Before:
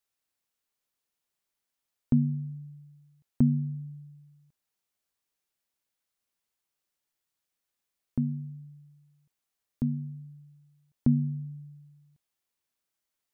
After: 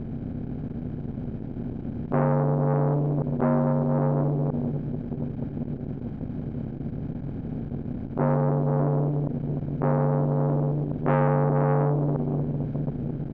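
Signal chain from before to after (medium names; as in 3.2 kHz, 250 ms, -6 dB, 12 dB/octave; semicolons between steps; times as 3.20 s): spectral levelling over time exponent 0.2; band-stop 940 Hz, Q 6.6; comb 1.3 ms, depth 43%; in parallel at 0 dB: peak limiter -20 dBFS, peak gain reduction 10.5 dB; on the sum: short-mantissa float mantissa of 6-bit; distance through air 200 m; echo that smears into a reverb 478 ms, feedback 62%, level -10 dB; transformer saturation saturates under 880 Hz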